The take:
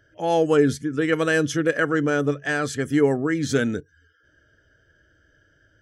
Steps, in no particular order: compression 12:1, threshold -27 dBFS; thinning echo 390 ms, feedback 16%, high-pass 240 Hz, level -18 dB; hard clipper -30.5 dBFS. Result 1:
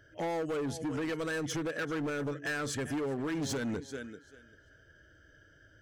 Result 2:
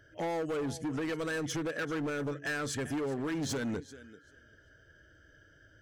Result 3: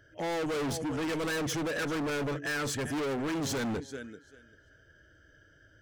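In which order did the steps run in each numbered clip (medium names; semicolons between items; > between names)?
thinning echo > compression > hard clipper; compression > thinning echo > hard clipper; thinning echo > hard clipper > compression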